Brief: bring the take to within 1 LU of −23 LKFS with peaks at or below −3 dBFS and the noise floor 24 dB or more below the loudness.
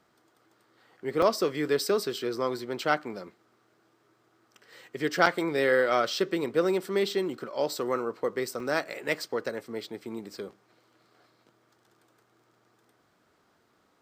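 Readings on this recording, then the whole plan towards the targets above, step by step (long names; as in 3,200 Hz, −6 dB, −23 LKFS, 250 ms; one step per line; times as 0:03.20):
number of dropouts 3; longest dropout 3.4 ms; integrated loudness −28.5 LKFS; sample peak −7.5 dBFS; target loudness −23.0 LKFS
→ repair the gap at 0:01.22/0:05.26/0:08.60, 3.4 ms
level +5.5 dB
brickwall limiter −3 dBFS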